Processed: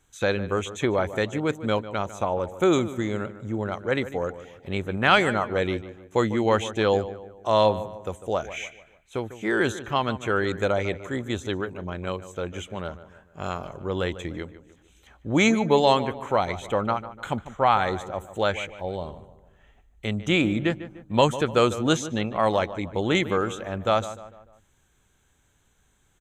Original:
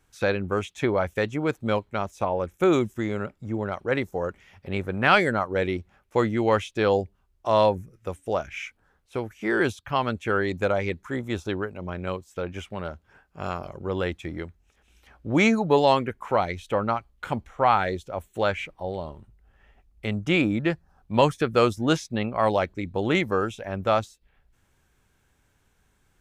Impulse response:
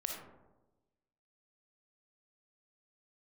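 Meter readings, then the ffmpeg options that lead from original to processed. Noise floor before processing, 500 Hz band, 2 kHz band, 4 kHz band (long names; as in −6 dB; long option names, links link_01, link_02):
−67 dBFS, 0.0 dB, 0.0 dB, +3.5 dB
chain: -filter_complex "[0:a]superequalizer=13b=1.58:14b=0.562:15b=2.24,asplit=2[link_01][link_02];[link_02]adelay=149,lowpass=frequency=2300:poles=1,volume=-13.5dB,asplit=2[link_03][link_04];[link_04]adelay=149,lowpass=frequency=2300:poles=1,volume=0.45,asplit=2[link_05][link_06];[link_06]adelay=149,lowpass=frequency=2300:poles=1,volume=0.45,asplit=2[link_07][link_08];[link_08]adelay=149,lowpass=frequency=2300:poles=1,volume=0.45[link_09];[link_01][link_03][link_05][link_07][link_09]amix=inputs=5:normalize=0"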